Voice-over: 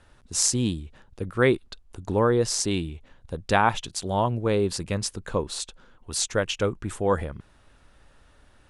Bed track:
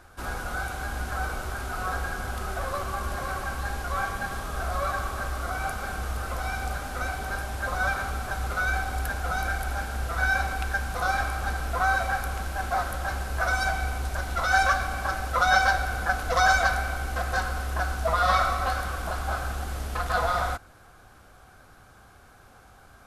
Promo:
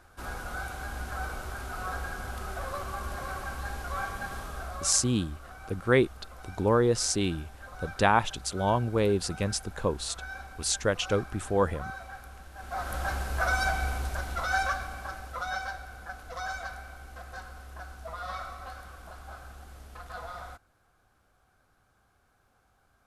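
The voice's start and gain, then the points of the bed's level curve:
4.50 s, -2.0 dB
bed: 4.42 s -5 dB
5.23 s -16.5 dB
12.52 s -16.5 dB
12.96 s -1.5 dB
13.93 s -1.5 dB
15.82 s -15.5 dB

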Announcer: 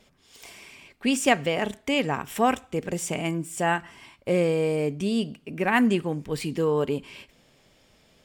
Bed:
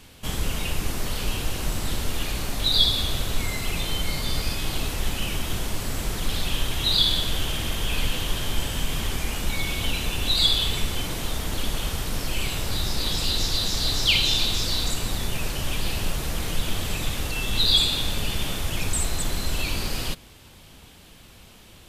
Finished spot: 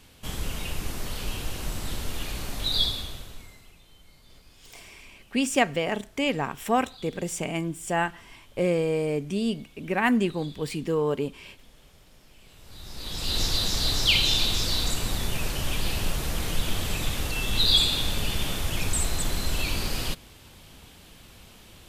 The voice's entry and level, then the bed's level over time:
4.30 s, -1.5 dB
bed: 2.84 s -5 dB
3.80 s -28.5 dB
12.41 s -28.5 dB
13.39 s -1 dB

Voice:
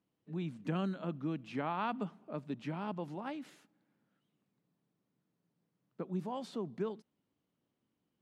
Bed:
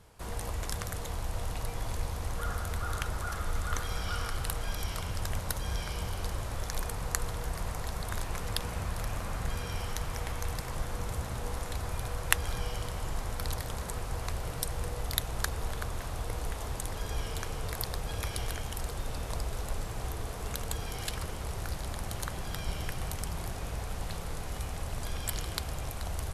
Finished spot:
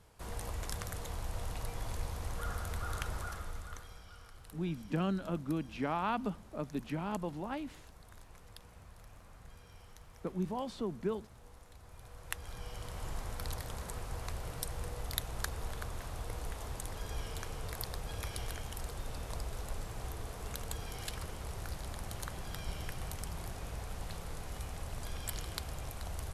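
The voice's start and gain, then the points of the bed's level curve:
4.25 s, +2.0 dB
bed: 3.19 s -4.5 dB
4.10 s -20.5 dB
11.79 s -20.5 dB
13.05 s -5.5 dB

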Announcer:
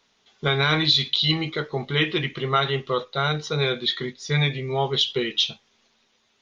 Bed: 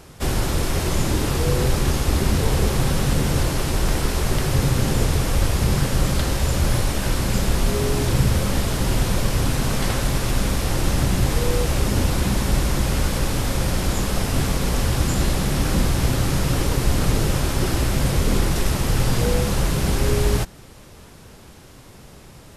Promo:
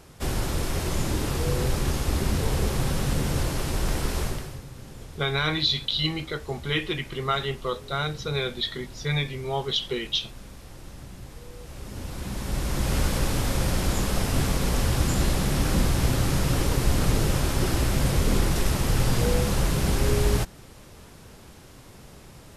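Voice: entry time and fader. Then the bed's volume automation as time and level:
4.75 s, -4.5 dB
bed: 4.23 s -5.5 dB
4.64 s -22.5 dB
11.54 s -22.5 dB
12.96 s -3 dB

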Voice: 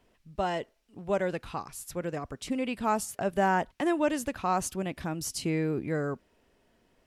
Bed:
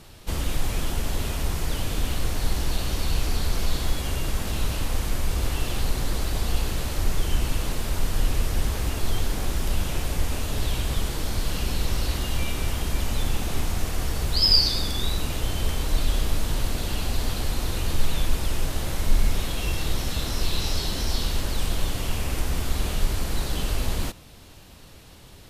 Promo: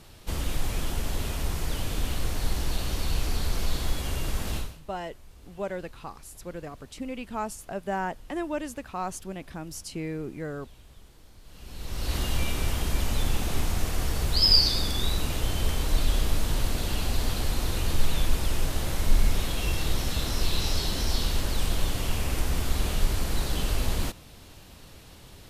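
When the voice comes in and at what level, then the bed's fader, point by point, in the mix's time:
4.50 s, -4.5 dB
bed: 4.57 s -3 dB
4.82 s -26 dB
11.41 s -26 dB
12.16 s -1 dB

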